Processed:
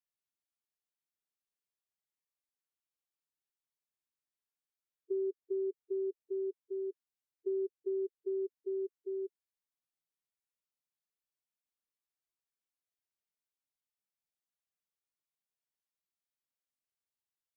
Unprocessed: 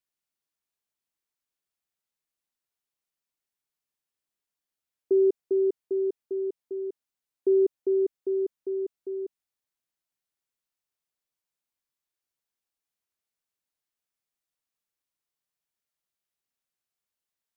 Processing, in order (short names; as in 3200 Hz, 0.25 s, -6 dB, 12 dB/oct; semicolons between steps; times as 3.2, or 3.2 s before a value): compressor, threshold -28 dBFS, peak gain reduction 9 dB; harmonic-percussive split percussive -18 dB; gain -4.5 dB